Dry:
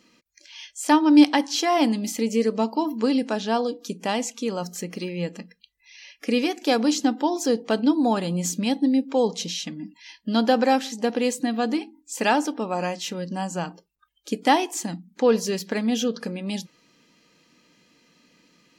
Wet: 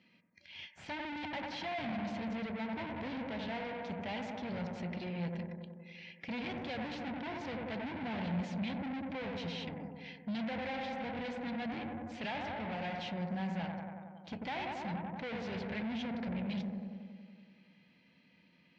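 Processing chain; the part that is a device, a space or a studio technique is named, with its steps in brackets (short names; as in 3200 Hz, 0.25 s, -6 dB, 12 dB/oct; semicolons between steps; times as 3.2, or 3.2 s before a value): analogue delay pedal into a guitar amplifier (analogue delay 93 ms, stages 1024, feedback 74%, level -7 dB; tube stage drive 33 dB, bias 0.75; speaker cabinet 88–3700 Hz, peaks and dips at 89 Hz +10 dB, 180 Hz +6 dB, 310 Hz -8 dB, 440 Hz -8 dB, 1200 Hz -10 dB, 2200 Hz +5 dB); gain -2.5 dB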